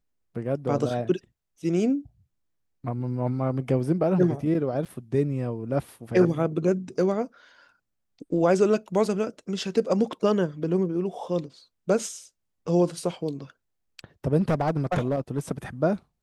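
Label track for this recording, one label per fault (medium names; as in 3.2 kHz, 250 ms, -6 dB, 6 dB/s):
4.850000	4.860000	dropout 6.4 ms
14.400000	15.390000	clipped -19 dBFS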